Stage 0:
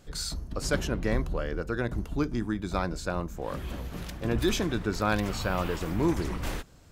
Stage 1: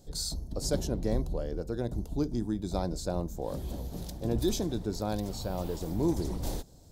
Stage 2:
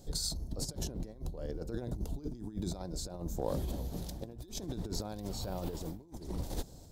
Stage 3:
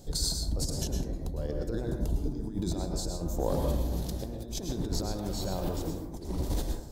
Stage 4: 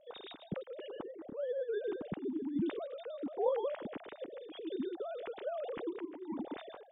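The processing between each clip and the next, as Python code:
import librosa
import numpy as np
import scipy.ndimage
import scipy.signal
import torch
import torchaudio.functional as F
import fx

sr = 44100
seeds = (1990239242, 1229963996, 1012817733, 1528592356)

y1 = fx.high_shelf(x, sr, hz=11000.0, db=4.5)
y1 = fx.rider(y1, sr, range_db=5, speed_s=2.0)
y1 = fx.band_shelf(y1, sr, hz=1800.0, db=-14.5, octaves=1.7)
y1 = y1 * librosa.db_to_amplitude(-2.5)
y2 = fx.over_compress(y1, sr, threshold_db=-35.0, ratio=-0.5)
y2 = fx.tremolo_random(y2, sr, seeds[0], hz=3.5, depth_pct=55)
y2 = fx.quant_float(y2, sr, bits=6)
y3 = fx.rev_plate(y2, sr, seeds[1], rt60_s=0.67, hf_ratio=0.45, predelay_ms=95, drr_db=2.5)
y3 = y3 * librosa.db_to_amplitude(4.0)
y4 = fx.sine_speech(y3, sr)
y4 = y4 * librosa.db_to_amplitude(-8.0)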